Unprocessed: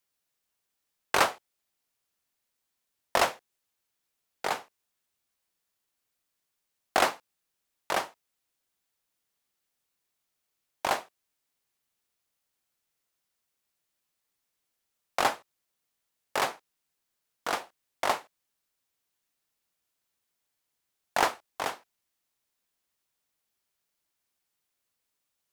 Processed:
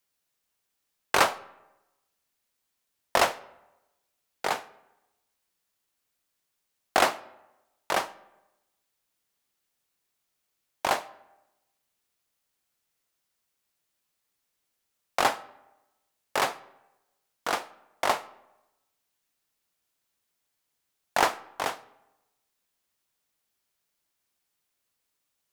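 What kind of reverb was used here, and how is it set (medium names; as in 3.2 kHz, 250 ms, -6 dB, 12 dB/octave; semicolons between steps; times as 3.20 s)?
algorithmic reverb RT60 1 s, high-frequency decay 0.6×, pre-delay 15 ms, DRR 19 dB; trim +2 dB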